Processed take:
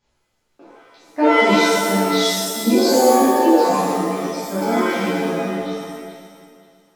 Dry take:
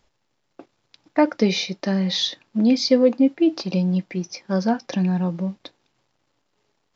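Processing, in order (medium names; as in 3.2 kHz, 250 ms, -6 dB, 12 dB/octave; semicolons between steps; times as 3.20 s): backward echo that repeats 267 ms, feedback 48%, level -11 dB; pitch-shifted reverb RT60 1 s, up +7 st, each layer -2 dB, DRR -11 dB; trim -11 dB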